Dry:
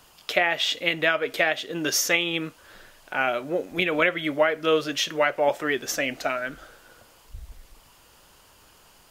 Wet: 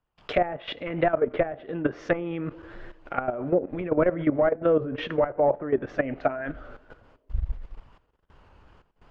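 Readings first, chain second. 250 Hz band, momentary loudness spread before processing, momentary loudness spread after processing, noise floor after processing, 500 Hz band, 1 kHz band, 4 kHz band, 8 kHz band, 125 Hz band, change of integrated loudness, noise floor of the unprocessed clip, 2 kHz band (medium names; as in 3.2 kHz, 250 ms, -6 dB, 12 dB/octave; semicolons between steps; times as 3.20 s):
+2.5 dB, 7 LU, 13 LU, -70 dBFS, +1.5 dB, -1.5 dB, -15.5 dB, under -30 dB, +6.0 dB, -2.5 dB, -55 dBFS, -11.0 dB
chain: hard clipper -14 dBFS, distortion -18 dB; gate with hold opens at -44 dBFS; low-pass 1.9 kHz 12 dB/octave; on a send: band-passed feedback delay 108 ms, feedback 80%, band-pass 400 Hz, level -22 dB; on the sum: low-pass that closes with the level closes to 880 Hz, closed at -22.5 dBFS; level held to a coarse grid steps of 13 dB; bass shelf 150 Hz +11 dB; warped record 33 1/3 rpm, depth 100 cents; trim +6 dB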